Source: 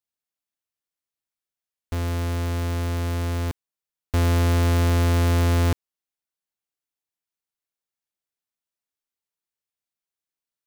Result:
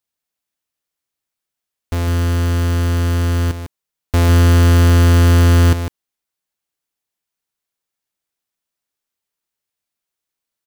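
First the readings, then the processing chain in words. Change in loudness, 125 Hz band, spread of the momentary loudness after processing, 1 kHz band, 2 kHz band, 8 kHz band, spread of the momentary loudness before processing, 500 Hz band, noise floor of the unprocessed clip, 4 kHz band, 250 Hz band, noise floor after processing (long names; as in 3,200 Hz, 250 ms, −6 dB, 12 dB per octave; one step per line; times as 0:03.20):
+9.0 dB, +9.5 dB, 11 LU, +6.0 dB, +8.0 dB, +8.0 dB, 10 LU, +6.5 dB, below −85 dBFS, +8.0 dB, +8.5 dB, −84 dBFS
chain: single-tap delay 152 ms −9 dB
level +7 dB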